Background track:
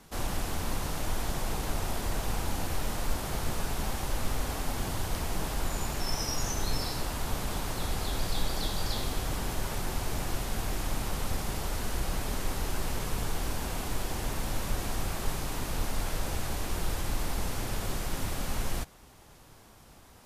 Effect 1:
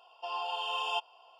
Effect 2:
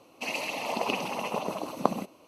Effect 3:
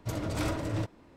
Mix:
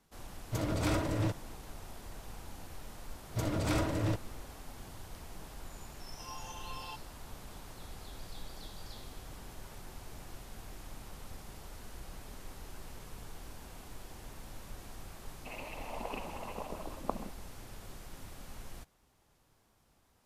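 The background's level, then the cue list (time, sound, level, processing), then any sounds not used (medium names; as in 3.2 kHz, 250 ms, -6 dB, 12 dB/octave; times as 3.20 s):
background track -15.5 dB
0.46 s: add 3, fades 0.10 s
3.30 s: add 3
5.96 s: add 1 -15 dB + comb 3.7 ms, depth 83%
15.24 s: add 2 -10.5 dB + low-pass 2.4 kHz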